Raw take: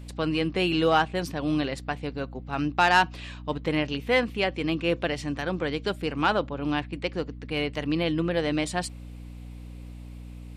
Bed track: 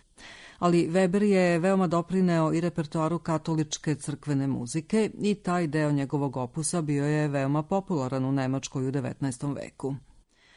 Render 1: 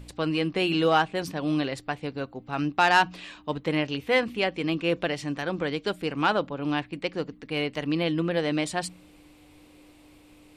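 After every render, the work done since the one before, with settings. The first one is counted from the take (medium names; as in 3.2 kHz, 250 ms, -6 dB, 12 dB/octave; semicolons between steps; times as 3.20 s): de-hum 60 Hz, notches 4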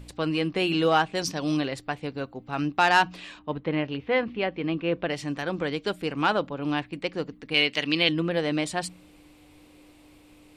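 1.13–1.57 s: peaking EQ 5.7 kHz +13 dB 0.89 oct; 3.39–5.10 s: distance through air 280 m; 7.54–8.09 s: frequency weighting D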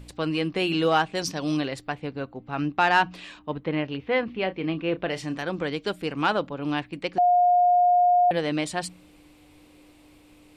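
1.92–3.14 s: tone controls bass +1 dB, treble -8 dB; 4.32–5.43 s: doubling 32 ms -12 dB; 7.18–8.31 s: bleep 713 Hz -15.5 dBFS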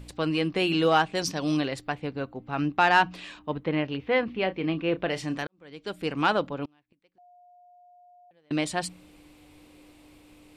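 5.47–6.07 s: fade in quadratic; 6.65–8.51 s: inverted gate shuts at -31 dBFS, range -37 dB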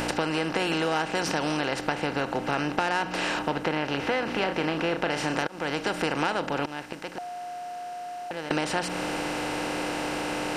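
spectral levelling over time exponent 0.4; compression, threshold -23 dBFS, peak gain reduction 10 dB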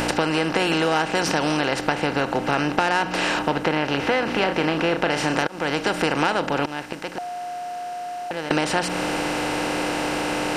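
trim +5.5 dB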